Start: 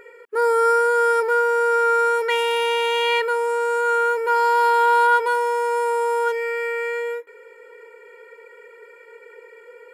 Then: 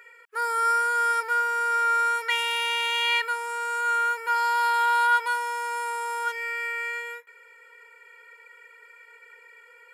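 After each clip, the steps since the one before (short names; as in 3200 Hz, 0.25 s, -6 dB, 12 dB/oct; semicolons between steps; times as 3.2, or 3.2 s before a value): HPF 1300 Hz 12 dB/oct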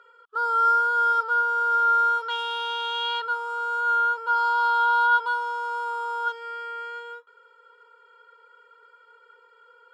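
EQ curve 920 Hz 0 dB, 1300 Hz +9 dB, 2100 Hz -30 dB, 3200 Hz +1 dB, 12000 Hz -25 dB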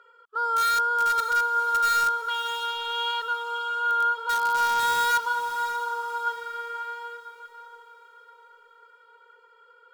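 in parallel at -7 dB: wrapped overs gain 16.5 dB; on the sum: diffused feedback echo 0.584 s, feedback 42%, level -11 dB; gain -4.5 dB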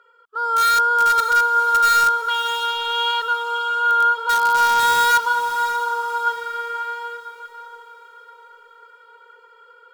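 AGC gain up to 7 dB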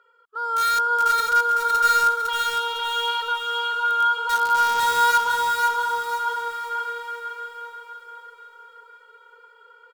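feedback echo 0.506 s, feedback 38%, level -4.5 dB; gain -4.5 dB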